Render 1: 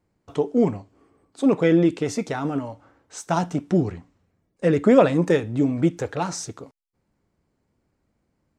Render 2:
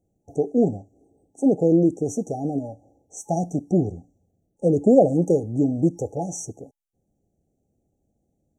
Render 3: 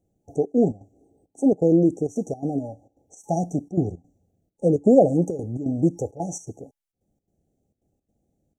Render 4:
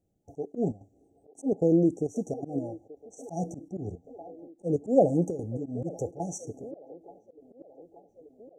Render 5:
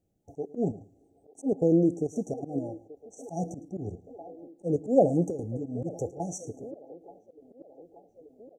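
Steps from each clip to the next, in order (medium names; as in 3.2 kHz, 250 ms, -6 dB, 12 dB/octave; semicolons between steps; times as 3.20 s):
FFT band-reject 850–5600 Hz
trance gate "xxxxx.xx." 167 bpm -12 dB
feedback echo behind a band-pass 881 ms, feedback 62%, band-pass 710 Hz, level -15 dB; slow attack 127 ms; trim -4.5 dB
feedback delay 109 ms, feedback 17%, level -19.5 dB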